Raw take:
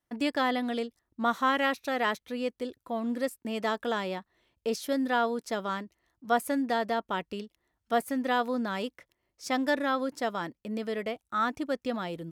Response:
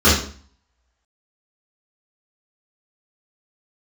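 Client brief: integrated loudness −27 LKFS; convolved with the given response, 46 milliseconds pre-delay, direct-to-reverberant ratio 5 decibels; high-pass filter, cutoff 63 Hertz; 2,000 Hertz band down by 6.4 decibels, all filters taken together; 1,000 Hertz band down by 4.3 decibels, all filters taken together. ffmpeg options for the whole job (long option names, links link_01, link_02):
-filter_complex "[0:a]highpass=63,equalizer=frequency=1000:width_type=o:gain=-4.5,equalizer=frequency=2000:width_type=o:gain=-6.5,asplit=2[link_01][link_02];[1:a]atrim=start_sample=2205,adelay=46[link_03];[link_02][link_03]afir=irnorm=-1:irlink=0,volume=-29.5dB[link_04];[link_01][link_04]amix=inputs=2:normalize=0,volume=3.5dB"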